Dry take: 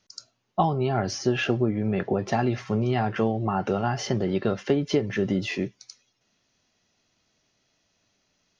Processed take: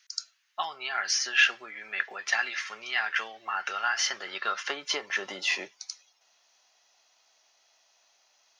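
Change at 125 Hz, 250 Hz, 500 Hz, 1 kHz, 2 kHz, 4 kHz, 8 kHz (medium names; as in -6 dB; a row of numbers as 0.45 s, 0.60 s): under -35 dB, -26.5 dB, -17.5 dB, -5.0 dB, +8.0 dB, +6.5 dB, no reading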